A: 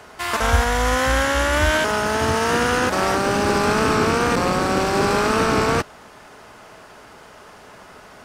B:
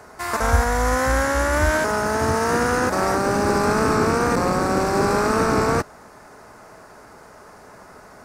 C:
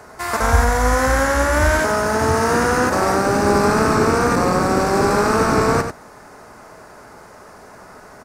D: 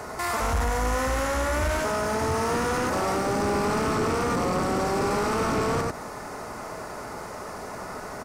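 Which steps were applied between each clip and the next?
peaking EQ 3.1 kHz -14 dB 0.71 oct
delay 93 ms -8 dB; trim +2.5 dB
saturation -14.5 dBFS, distortion -12 dB; peak limiter -25.5 dBFS, peak gain reduction 11 dB; band-stop 1.6 kHz, Q 10; trim +5.5 dB

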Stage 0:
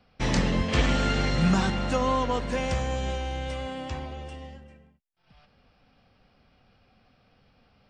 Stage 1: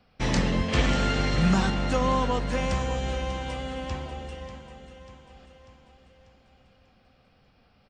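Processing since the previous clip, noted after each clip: feedback delay 592 ms, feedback 55%, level -12.5 dB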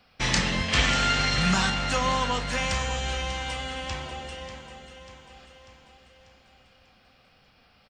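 tilt shelf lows -5 dB, about 860 Hz; doubling 33 ms -10.5 dB; dynamic bell 400 Hz, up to -5 dB, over -40 dBFS, Q 0.72; trim +2.5 dB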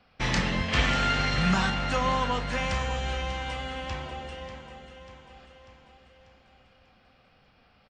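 low-pass 2.4 kHz 6 dB/octave

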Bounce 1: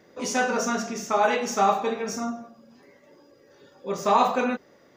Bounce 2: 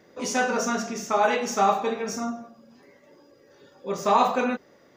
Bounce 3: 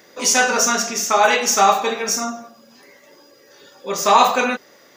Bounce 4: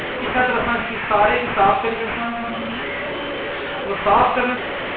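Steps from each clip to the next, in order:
no audible change
tilt EQ +3 dB/octave; trim +7.5 dB
one-bit delta coder 16 kbps, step -19 dBFS

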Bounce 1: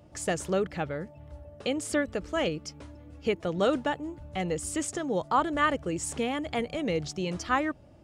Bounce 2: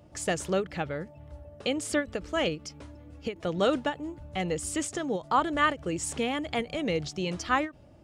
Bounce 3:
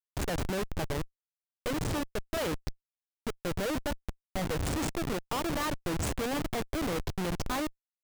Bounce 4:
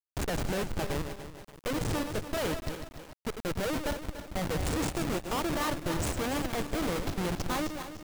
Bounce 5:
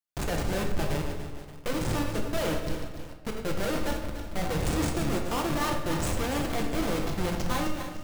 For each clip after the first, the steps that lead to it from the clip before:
dynamic bell 3.3 kHz, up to +3 dB, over -47 dBFS, Q 0.8; endings held to a fixed fall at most 260 dB/s
Schmitt trigger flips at -30 dBFS
backward echo that repeats 145 ms, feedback 59%, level -7.5 dB; bit crusher 8-bit
simulated room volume 260 m³, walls mixed, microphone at 0.81 m

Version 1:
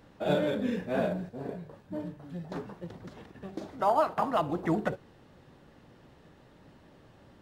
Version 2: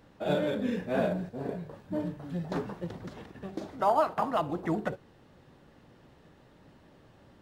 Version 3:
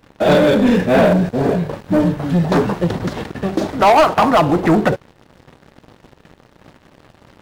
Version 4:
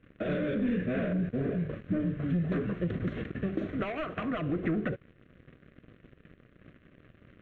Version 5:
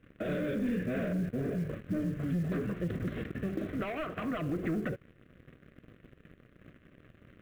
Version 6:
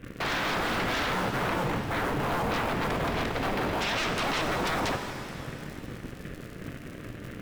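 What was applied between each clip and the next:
gain riding within 5 dB 2 s
waveshaping leveller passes 3; trim +9 dB
compression, threshold -18 dBFS, peak gain reduction 9 dB; distance through air 240 m; static phaser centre 2.1 kHz, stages 4; trim -7 dB
in parallel at +1 dB: peak limiter -28 dBFS, peak gain reduction 8 dB; on the sum: short-mantissa float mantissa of 4-bit; trim -7 dB
crackle 91 per s -51 dBFS; sine folder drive 16 dB, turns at -23 dBFS; pitch-shifted reverb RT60 2.5 s, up +7 st, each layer -8 dB, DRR 5.5 dB; trim -3.5 dB

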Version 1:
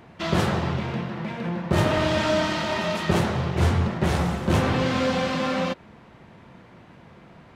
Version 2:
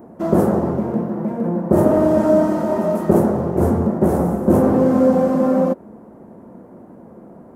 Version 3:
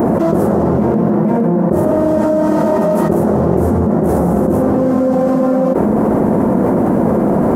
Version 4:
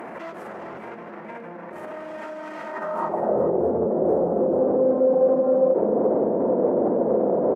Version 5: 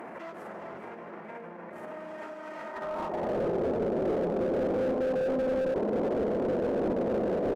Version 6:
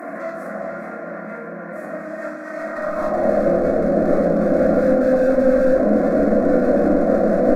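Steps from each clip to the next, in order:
FFT filter 140 Hz 0 dB, 220 Hz +13 dB, 580 Hz +11 dB, 1.5 kHz -4 dB, 2.5 kHz -18 dB, 3.7 kHz -21 dB, 12 kHz +10 dB; trim -1 dB
level flattener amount 100%; trim -2.5 dB
peak limiter -13 dBFS, peak gain reduction 11 dB; band-pass sweep 2.3 kHz -> 500 Hz, 2.64–3.41 s; delay 415 ms -12 dB; trim +5 dB
echo from a far wall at 72 m, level -9 dB; Schroeder reverb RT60 3.9 s, DRR 15.5 dB; slew-rate limiter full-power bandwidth 48 Hz; trim -6 dB
static phaser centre 600 Hz, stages 8; simulated room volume 440 m³, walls furnished, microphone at 3.3 m; trim +9 dB

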